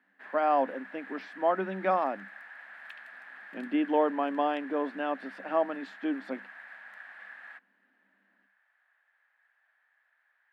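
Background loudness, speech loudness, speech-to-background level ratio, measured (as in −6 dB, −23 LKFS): −46.5 LKFS, −30.5 LKFS, 16.0 dB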